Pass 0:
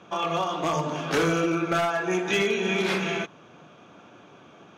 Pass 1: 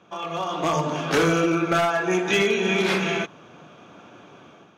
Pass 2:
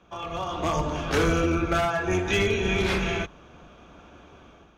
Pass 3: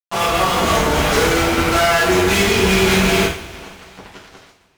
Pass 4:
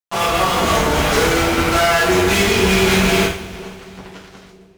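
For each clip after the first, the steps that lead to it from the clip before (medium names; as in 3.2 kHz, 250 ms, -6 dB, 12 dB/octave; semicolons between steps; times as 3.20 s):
level rider gain up to 8.5 dB; trim -5 dB
octave divider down 2 oct, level 0 dB; trim -3.5 dB
fuzz box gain 43 dB, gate -43 dBFS; two-slope reverb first 0.43 s, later 2.5 s, from -20 dB, DRR -6.5 dB; trim -8 dB
bucket-brigade echo 469 ms, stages 2048, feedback 53%, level -20 dB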